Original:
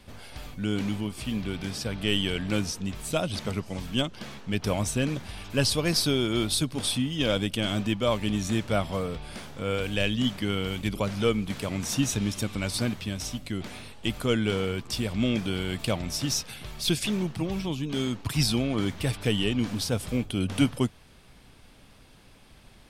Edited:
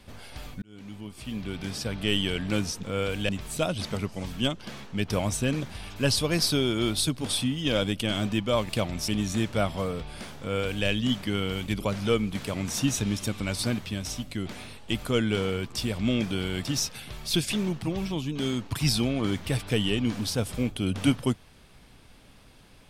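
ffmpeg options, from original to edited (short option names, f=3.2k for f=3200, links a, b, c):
-filter_complex "[0:a]asplit=7[a][b][c][d][e][f][g];[a]atrim=end=0.62,asetpts=PTS-STARTPTS,afade=t=out:st=0.616:d=0.004:c=hsin[h];[b]atrim=start=0.62:end=2.832,asetpts=PTS-STARTPTS,afade=t=in:d=1.14[i];[c]atrim=start=9.548:end=10.012[j];[d]atrim=start=2.828:end=8.232[k];[e]atrim=start=15.798:end=16.192[l];[f]atrim=start=8.228:end=15.802[m];[g]atrim=start=16.188[n];[h][i]concat=n=2:v=0:a=1[o];[o][j]acrossfade=d=0.004:c1=hsin:c2=hsin[p];[p][k]acrossfade=d=0.004:c1=hsin:c2=hsin[q];[q][l]acrossfade=d=0.004:c1=hsin:c2=hsin[r];[r][m]acrossfade=d=0.004:c1=hsin:c2=hsin[s];[s][n]acrossfade=d=0.004:c1=hsin:c2=hsin"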